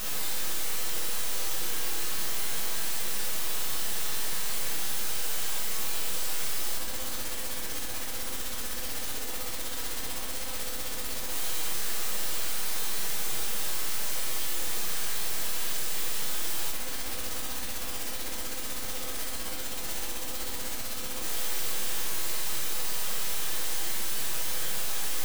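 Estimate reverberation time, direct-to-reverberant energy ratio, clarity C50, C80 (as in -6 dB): 0.90 s, -3.0 dB, 3.5 dB, 6.0 dB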